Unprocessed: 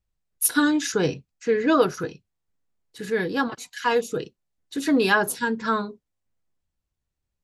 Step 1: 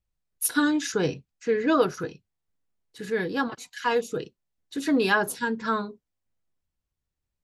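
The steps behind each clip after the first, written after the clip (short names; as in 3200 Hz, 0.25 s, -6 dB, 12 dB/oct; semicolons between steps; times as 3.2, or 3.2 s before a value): high shelf 8600 Hz -3.5 dB; gain -2.5 dB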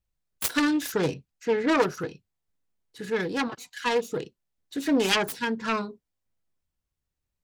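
self-modulated delay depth 0.3 ms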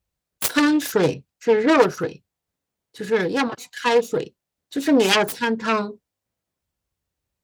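HPF 52 Hz; bell 570 Hz +3.5 dB 1.2 oct; gain +5 dB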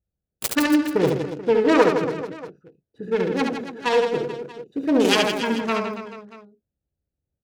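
Wiener smoothing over 41 samples; on a send: reverse bouncing-ball echo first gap 70 ms, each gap 1.3×, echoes 5; on the sum: gain -1.5 dB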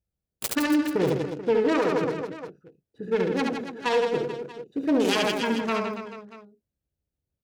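limiter -12 dBFS, peak gain reduction 10.5 dB; gain -2 dB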